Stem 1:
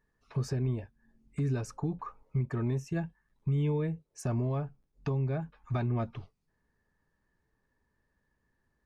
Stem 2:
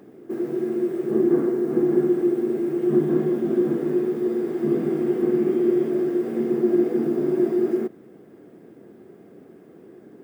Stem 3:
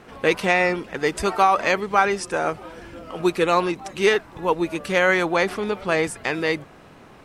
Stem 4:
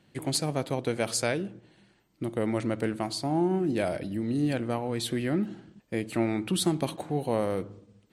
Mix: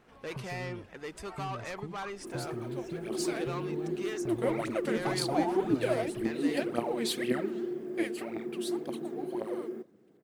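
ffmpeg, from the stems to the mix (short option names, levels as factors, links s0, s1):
-filter_complex "[0:a]acompressor=threshold=0.01:ratio=6,volume=1[s0];[1:a]adelay=1950,volume=0.168[s1];[2:a]asoftclip=type=tanh:threshold=0.119,volume=0.168[s2];[3:a]highpass=300,alimiter=limit=0.0944:level=0:latency=1:release=85,aphaser=in_gain=1:out_gain=1:delay=4.7:decay=0.79:speed=1.9:type=triangular,adelay=2050,volume=0.668,afade=t=in:st=3.01:d=0.7:silence=0.223872,afade=t=out:st=8.06:d=0.25:silence=0.316228[s3];[s0][s1][s2][s3]amix=inputs=4:normalize=0"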